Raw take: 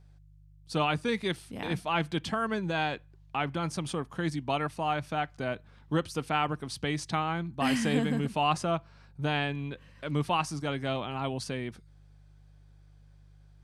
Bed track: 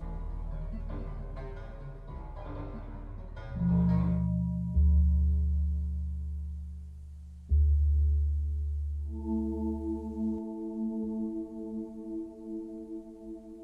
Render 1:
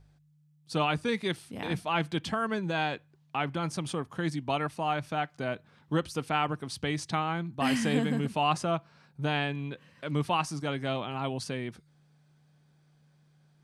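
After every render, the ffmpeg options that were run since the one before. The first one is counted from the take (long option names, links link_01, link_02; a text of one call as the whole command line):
ffmpeg -i in.wav -af "bandreject=frequency=50:width_type=h:width=4,bandreject=frequency=100:width_type=h:width=4" out.wav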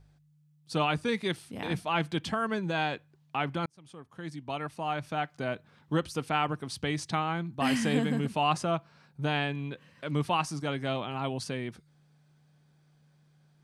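ffmpeg -i in.wav -filter_complex "[0:a]asplit=2[link_01][link_02];[link_01]atrim=end=3.66,asetpts=PTS-STARTPTS,afade=type=out:start_time=3.656:duration=0.004:curve=hsin[link_03];[link_02]atrim=start=3.66,asetpts=PTS-STARTPTS,afade=type=in:duration=1.65[link_04];[link_03][link_04]concat=n=2:v=0:a=1" out.wav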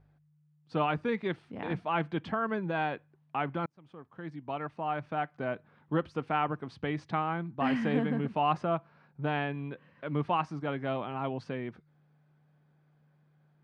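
ffmpeg -i in.wav -af "lowpass=1900,lowshelf=frequency=100:gain=-8.5" out.wav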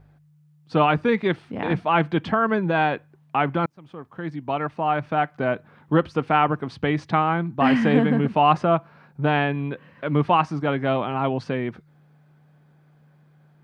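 ffmpeg -i in.wav -af "volume=10.5dB" out.wav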